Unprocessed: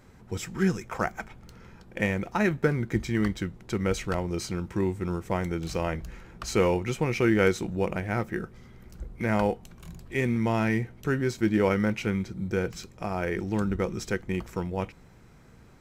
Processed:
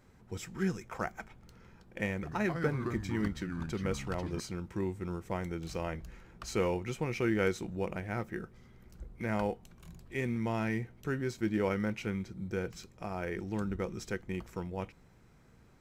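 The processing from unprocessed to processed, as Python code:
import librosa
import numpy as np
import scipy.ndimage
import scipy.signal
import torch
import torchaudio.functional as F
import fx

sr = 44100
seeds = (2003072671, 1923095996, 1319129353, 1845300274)

y = fx.echo_pitch(x, sr, ms=87, semitones=-4, count=2, db_per_echo=-6.0, at=(2.14, 4.4))
y = y * librosa.db_to_amplitude(-7.5)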